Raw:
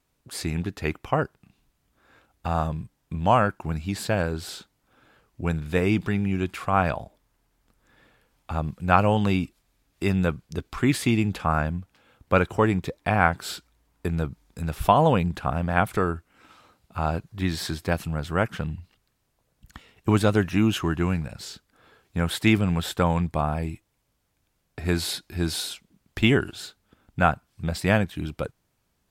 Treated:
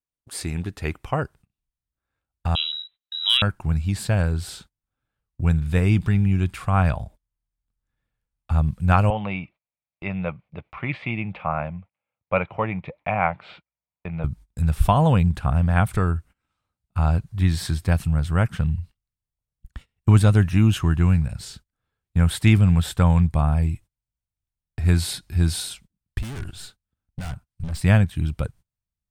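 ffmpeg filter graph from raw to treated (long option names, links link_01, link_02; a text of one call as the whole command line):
ffmpeg -i in.wav -filter_complex "[0:a]asettb=1/sr,asplit=3[link_01][link_02][link_03];[link_01]atrim=end=2.554[link_04];[link_02]atrim=start=2.55:end=3.42,asetpts=PTS-STARTPTS,afade=type=in:duration=0.004:curve=qsin,afade=type=out:start_time=0.866:duration=0.004:curve=qsin,lowpass=frequency=3400:width_type=q:width=0.5098,lowpass=frequency=3400:width_type=q:width=0.6013,lowpass=frequency=3400:width_type=q:width=0.9,lowpass=frequency=3400:width_type=q:width=2.563,afreqshift=-4000,asoftclip=type=hard:threshold=-7.5dB[link_05];[link_03]atrim=start=3.416[link_06];[link_04][link_05]acrossfade=duration=0.004:curve1=hsin:curve2=qsin[link_07];[link_07][link_06]acrossfade=duration=0.004:curve1=qsin:curve2=hsin,asettb=1/sr,asplit=3[link_08][link_09][link_10];[link_08]atrim=end=9.104[link_11];[link_09]atrim=start=9.1:end=14.24,asetpts=PTS-STARTPTS,afade=type=in:duration=0.004:curve=qsin,afade=type=out:start_time=5.136:duration=0.004:curve=qsin,highpass=230,equalizer=frequency=260:width_type=q:width=4:gain=-10,equalizer=frequency=390:width_type=q:width=4:gain=-8,equalizer=frequency=590:width_type=q:width=4:gain=6,equalizer=frequency=850:width_type=q:width=4:gain=4,equalizer=frequency=1600:width_type=q:width=4:gain=-9,equalizer=frequency=2300:width_type=q:width=4:gain=7,lowpass=frequency=2700:width=0.5412,lowpass=frequency=2700:width=1.3066,bandreject=frequency=860:width=24[link_12];[link_10]atrim=start=14.236[link_13];[link_11][link_12]acrossfade=duration=0.004:curve1=hsin:curve2=qsin[link_14];[link_14][link_13]acrossfade=duration=0.004:curve1=qsin:curve2=hsin,asettb=1/sr,asplit=3[link_15][link_16][link_17];[link_15]atrim=end=26.184[link_18];[link_16]atrim=start=26.18:end=27.81,asetpts=PTS-STARTPTS,afade=type=in:duration=0.004:curve=qsin,afade=type=out:start_time=1.626:duration=0.004:curve=qsin,aeval=exprs='(tanh(31.6*val(0)+0.4)-tanh(0.4))/31.6':channel_layout=same,aeval=exprs='0.0299*(abs(mod(val(0)/0.0299+3,4)-2)-1)':channel_layout=same[link_19];[link_17]atrim=start=27.806[link_20];[link_18][link_19]acrossfade=duration=0.004:curve1=hsin:curve2=qsin[link_21];[link_21][link_20]acrossfade=duration=0.004:curve1=qsin:curve2=hsin,equalizer=frequency=8800:width_type=o:width=0.22:gain=8,agate=range=-25dB:threshold=-47dB:ratio=16:detection=peak,asubboost=boost=5.5:cutoff=140,volume=-1dB" out.wav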